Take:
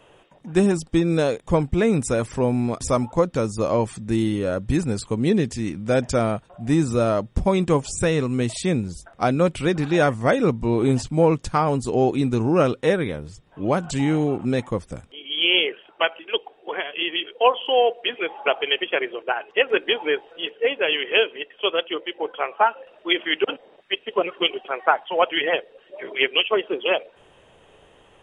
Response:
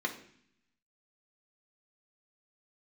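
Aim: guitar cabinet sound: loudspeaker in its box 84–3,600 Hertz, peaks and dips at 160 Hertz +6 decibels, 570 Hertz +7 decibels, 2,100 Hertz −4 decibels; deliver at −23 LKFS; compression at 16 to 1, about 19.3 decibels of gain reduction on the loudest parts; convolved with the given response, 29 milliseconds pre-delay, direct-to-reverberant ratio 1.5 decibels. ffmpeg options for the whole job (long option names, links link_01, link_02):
-filter_complex "[0:a]acompressor=threshold=-32dB:ratio=16,asplit=2[link_01][link_02];[1:a]atrim=start_sample=2205,adelay=29[link_03];[link_02][link_03]afir=irnorm=-1:irlink=0,volume=-7dB[link_04];[link_01][link_04]amix=inputs=2:normalize=0,highpass=84,equalizer=frequency=160:width_type=q:width=4:gain=6,equalizer=frequency=570:width_type=q:width=4:gain=7,equalizer=frequency=2100:width_type=q:width=4:gain=-4,lowpass=frequency=3600:width=0.5412,lowpass=frequency=3600:width=1.3066,volume=10.5dB"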